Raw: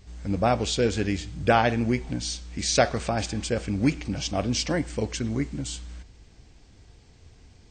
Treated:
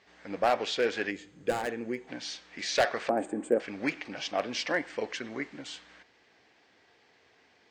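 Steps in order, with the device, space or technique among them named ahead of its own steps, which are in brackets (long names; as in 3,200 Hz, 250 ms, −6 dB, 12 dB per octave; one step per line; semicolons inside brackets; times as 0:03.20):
megaphone (band-pass filter 480–3,500 Hz; parametric band 1,800 Hz +6 dB 0.42 octaves; hard clipping −18 dBFS, distortion −10 dB)
0:01.11–0:02.08: gain on a spectral selection 550–6,300 Hz −10 dB
0:03.09–0:03.60: drawn EQ curve 140 Hz 0 dB, 280 Hz +13 dB, 5,500 Hz −27 dB, 8,100 Hz +9 dB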